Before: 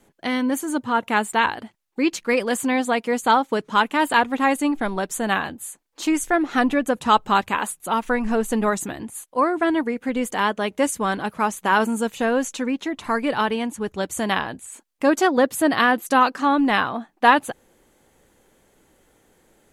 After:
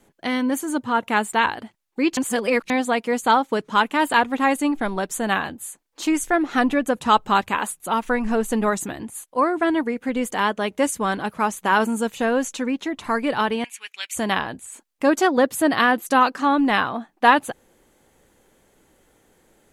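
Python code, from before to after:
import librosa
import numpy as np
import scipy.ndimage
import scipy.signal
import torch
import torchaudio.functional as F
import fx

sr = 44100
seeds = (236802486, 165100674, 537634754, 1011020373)

y = fx.highpass_res(x, sr, hz=2400.0, q=5.2, at=(13.64, 14.15))
y = fx.edit(y, sr, fx.reverse_span(start_s=2.17, length_s=0.53), tone=tone)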